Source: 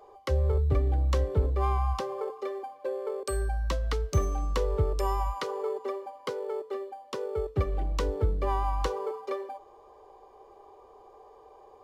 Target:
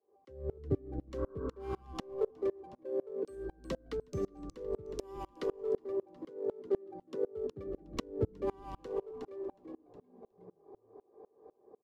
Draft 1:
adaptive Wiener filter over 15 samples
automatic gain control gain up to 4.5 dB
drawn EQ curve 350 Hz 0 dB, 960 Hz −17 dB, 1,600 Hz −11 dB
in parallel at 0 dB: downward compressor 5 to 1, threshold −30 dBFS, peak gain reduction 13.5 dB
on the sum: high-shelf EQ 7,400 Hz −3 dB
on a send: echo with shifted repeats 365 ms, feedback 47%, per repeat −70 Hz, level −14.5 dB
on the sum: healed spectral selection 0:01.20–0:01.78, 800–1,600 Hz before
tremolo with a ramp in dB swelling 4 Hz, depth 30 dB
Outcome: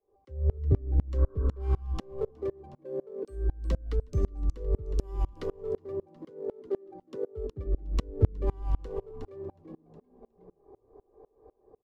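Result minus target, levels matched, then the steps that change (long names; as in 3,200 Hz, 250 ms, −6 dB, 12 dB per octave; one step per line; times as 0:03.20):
250 Hz band −4.5 dB
add after the parallel path: high-pass filter 190 Hz 12 dB per octave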